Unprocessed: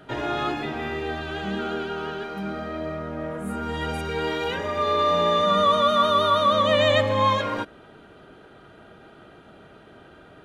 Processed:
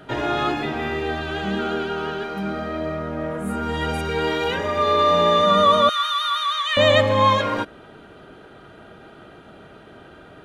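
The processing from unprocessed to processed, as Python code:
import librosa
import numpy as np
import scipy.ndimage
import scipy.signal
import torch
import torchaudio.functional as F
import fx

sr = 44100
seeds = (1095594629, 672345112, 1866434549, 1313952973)

y = fx.highpass(x, sr, hz=1400.0, slope=24, at=(5.89, 6.77))
y = y * 10.0 ** (4.0 / 20.0)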